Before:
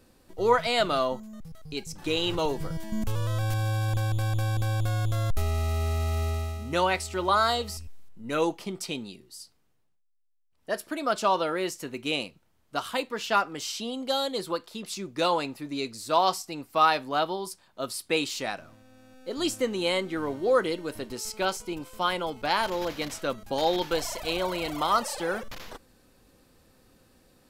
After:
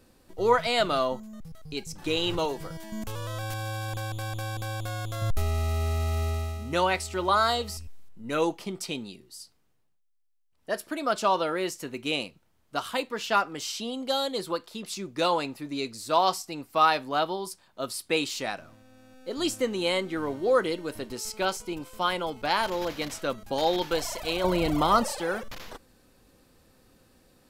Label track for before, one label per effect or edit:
2.440000	5.220000	low shelf 220 Hz -10 dB
24.440000	25.120000	low shelf 460 Hz +11.5 dB

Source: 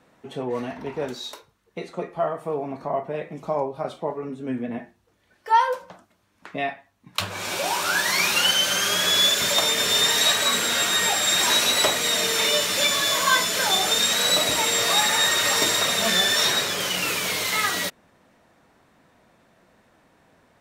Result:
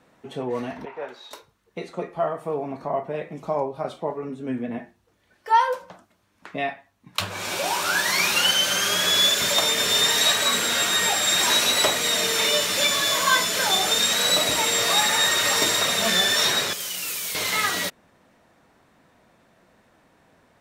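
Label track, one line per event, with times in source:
0.850000	1.310000	three-band isolator lows -20 dB, under 490 Hz, highs -18 dB, over 2800 Hz
16.730000	17.350000	pre-emphasis coefficient 0.8

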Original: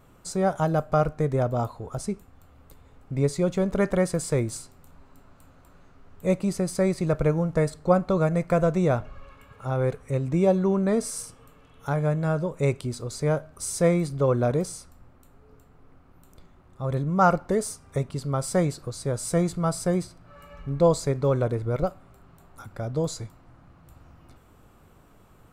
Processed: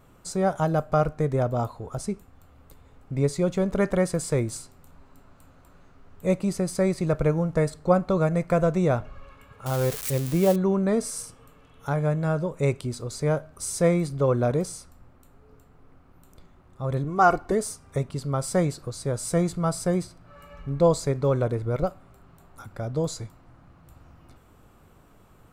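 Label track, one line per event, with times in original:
9.660000	10.560000	switching spikes of -20.5 dBFS
17.040000	17.520000	comb 2.7 ms, depth 62%

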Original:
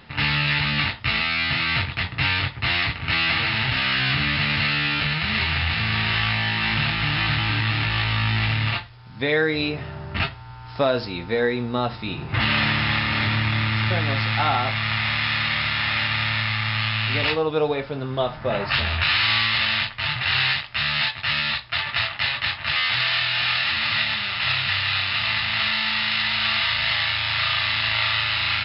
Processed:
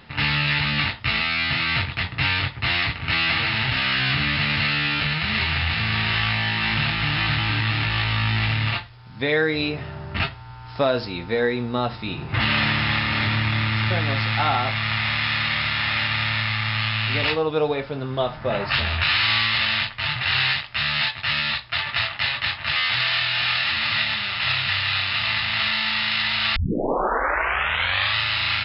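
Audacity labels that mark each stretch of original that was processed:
26.560000	26.560000	tape start 1.60 s

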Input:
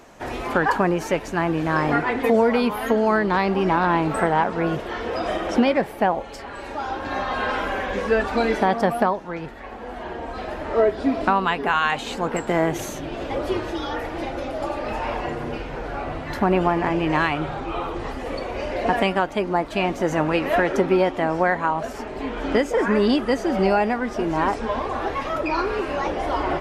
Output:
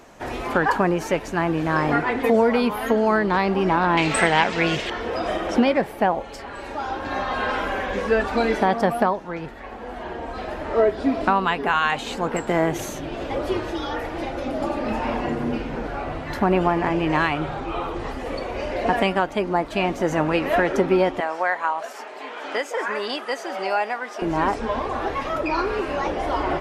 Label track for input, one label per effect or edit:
3.970000	4.900000	band shelf 4000 Hz +14.5 dB 2.4 oct
14.460000	15.870000	bell 230 Hz +10 dB 0.79 oct
21.200000	24.220000	HPF 670 Hz

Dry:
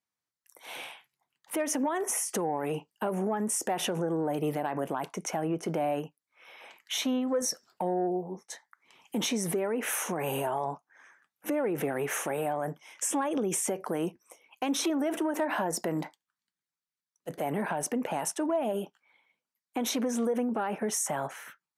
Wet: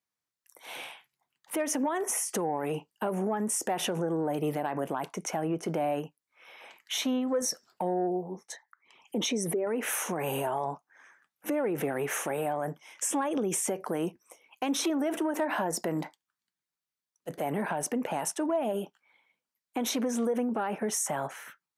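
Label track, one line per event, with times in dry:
8.520000	9.670000	formant sharpening exponent 1.5

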